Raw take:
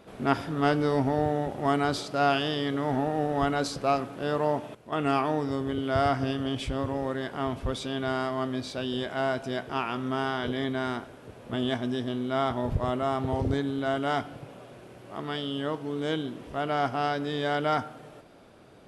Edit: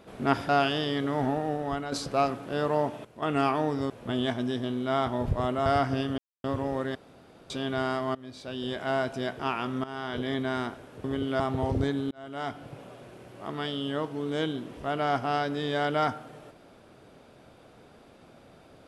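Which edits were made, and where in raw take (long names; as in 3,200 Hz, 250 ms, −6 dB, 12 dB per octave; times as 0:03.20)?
0:00.49–0:02.19: remove
0:02.95–0:03.62: fade out, to −9 dB
0:05.60–0:05.96: swap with 0:11.34–0:13.10
0:06.48–0:06.74: silence
0:07.25–0:07.80: fill with room tone
0:08.45–0:09.14: fade in, from −19 dB
0:10.14–0:10.74: fade in equal-power, from −15 dB
0:13.81–0:14.47: fade in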